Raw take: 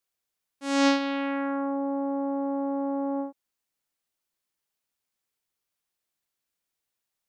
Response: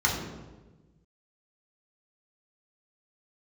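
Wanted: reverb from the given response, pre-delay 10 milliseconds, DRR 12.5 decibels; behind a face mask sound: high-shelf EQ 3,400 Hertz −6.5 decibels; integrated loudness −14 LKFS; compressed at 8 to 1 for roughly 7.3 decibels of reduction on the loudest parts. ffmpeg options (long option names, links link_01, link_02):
-filter_complex "[0:a]acompressor=threshold=-25dB:ratio=8,asplit=2[link_01][link_02];[1:a]atrim=start_sample=2205,adelay=10[link_03];[link_02][link_03]afir=irnorm=-1:irlink=0,volume=-25.5dB[link_04];[link_01][link_04]amix=inputs=2:normalize=0,highshelf=frequency=3400:gain=-6.5,volume=18dB"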